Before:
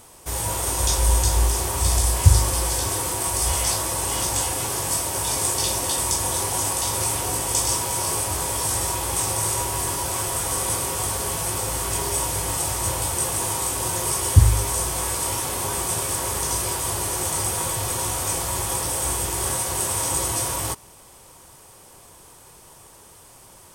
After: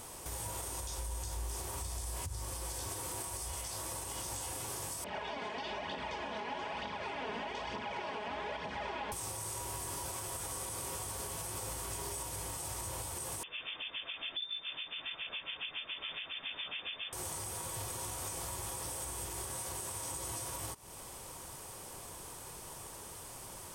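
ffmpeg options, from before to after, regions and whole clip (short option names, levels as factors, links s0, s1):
-filter_complex "[0:a]asettb=1/sr,asplit=3[s0][s1][s2];[s0]atrim=end=5.044[s3];[s1]atrim=start=5.04:end=9.12,asetpts=PTS-STARTPTS,afade=t=in:d=0.004:c=qsin,afade=t=out:st=4.076:d=0.004:c=qsin,aecho=1:1:4.8:0.75,atrim=end_sample=179928,aphaser=in_gain=1:out_gain=1:delay=4.9:decay=0.48:speed=1.1:type=triangular,highpass=150,equalizer=f=150:t=q:w=4:g=-9,equalizer=f=380:t=q:w=4:g=-9,equalizer=f=1200:t=q:w=4:g=-8,lowpass=f=2900:w=0.5412,lowpass=f=2900:w=1.3066[s4];[s2]atrim=start=9.116[s5];[s3][s4]acrossfade=d=0.004:c1=hsin:c2=qsin[s6];[s6][s5]acrossfade=d=0.004:c1=qsin:c2=hsin,asettb=1/sr,asplit=3[s7][s8][s9];[s7]atrim=end=13.434[s10];[s8]atrim=start=13.43:end=17.13,asetpts=PTS-STARTPTS,afade=t=in:d=0.004:c=qsin,afade=t=out:st=3.696:d=0.004:c=qsin,acrossover=split=2300[s11][s12];[s11]aeval=exprs='val(0)*(1-1/2+1/2*cos(2*PI*7.2*n/s))':c=same[s13];[s12]aeval=exprs='val(0)*(1-1/2-1/2*cos(2*PI*7.2*n/s))':c=same[s14];[s13][s14]amix=inputs=2:normalize=0,aeval=exprs='(tanh(5.01*val(0)+0.4)-tanh(0.4))/5.01':c=same,lowpass=f=3100:t=q:w=0.5098,lowpass=f=3100:t=q:w=0.6013,lowpass=f=3100:t=q:w=0.9,lowpass=f=3100:t=q:w=2.563,afreqshift=-3600[s15];[s9]atrim=start=17.126[s16];[s10][s15]acrossfade=d=0.004:c1=hsin:c2=qsin[s17];[s17][s16]acrossfade=d=0.004:c1=qsin:c2=hsin,acompressor=threshold=0.0158:ratio=4,alimiter=level_in=2.11:limit=0.0631:level=0:latency=1:release=141,volume=0.473"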